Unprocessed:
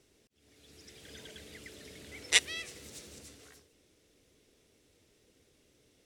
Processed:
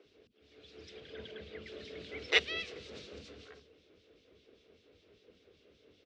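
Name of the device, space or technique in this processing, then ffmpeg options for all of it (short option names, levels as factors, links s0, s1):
guitar amplifier with harmonic tremolo: -filter_complex "[0:a]asettb=1/sr,asplit=3[s0][s1][s2];[s0]atrim=end=1.004[s3];[s1]atrim=start=1:end=1.67,asetpts=PTS-STARTPTS,afade=t=in:d=0.004:c=qsin,afade=t=out:st=0.666:d=0.004:c=qsin,highshelf=f=4200:g=-11.5[s4];[s2]atrim=start=1.666[s5];[s3][s4]acrossfade=d=0.004:c1=hsin:c2=qsin[s6];[s6][s5]acrossfade=d=0.004:c1=qsin:c2=hsin,acrossover=split=2400[s7][s8];[s7]aeval=exprs='val(0)*(1-0.7/2+0.7/2*cos(2*PI*5.1*n/s))':c=same[s9];[s8]aeval=exprs='val(0)*(1-0.7/2-0.7/2*cos(2*PI*5.1*n/s))':c=same[s10];[s9][s10]amix=inputs=2:normalize=0,asoftclip=type=tanh:threshold=0.106,highpass=75,equalizer=f=130:t=q:w=4:g=-10,equalizer=f=440:t=q:w=4:g=5,equalizer=f=890:t=q:w=4:g=-6,equalizer=f=1900:t=q:w=4:g=-5,lowpass=f=4200:w=0.5412,lowpass=f=4200:w=1.3066,acrossover=split=250[s11][s12];[s11]adelay=50[s13];[s13][s12]amix=inputs=2:normalize=0,volume=2.51"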